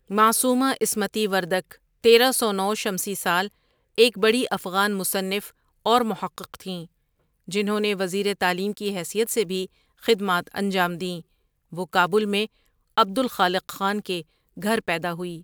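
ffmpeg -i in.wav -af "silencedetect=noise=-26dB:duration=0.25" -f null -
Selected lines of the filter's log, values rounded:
silence_start: 1.72
silence_end: 2.04 | silence_duration: 0.32
silence_start: 3.46
silence_end: 3.98 | silence_duration: 0.52
silence_start: 5.39
silence_end: 5.86 | silence_duration: 0.47
silence_start: 6.81
silence_end: 7.51 | silence_duration: 0.70
silence_start: 9.64
silence_end: 10.06 | silence_duration: 0.42
silence_start: 11.18
silence_end: 11.78 | silence_duration: 0.59
silence_start: 12.45
silence_end: 12.98 | silence_duration: 0.52
silence_start: 14.20
silence_end: 14.62 | silence_duration: 0.43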